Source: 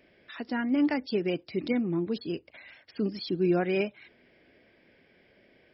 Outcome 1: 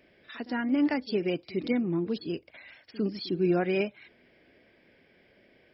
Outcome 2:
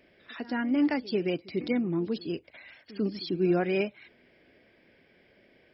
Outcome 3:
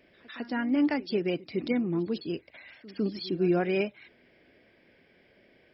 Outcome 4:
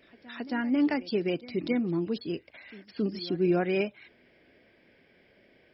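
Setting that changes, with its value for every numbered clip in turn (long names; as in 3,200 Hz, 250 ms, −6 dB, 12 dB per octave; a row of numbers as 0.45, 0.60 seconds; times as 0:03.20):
echo ahead of the sound, delay time: 53, 96, 154, 271 milliseconds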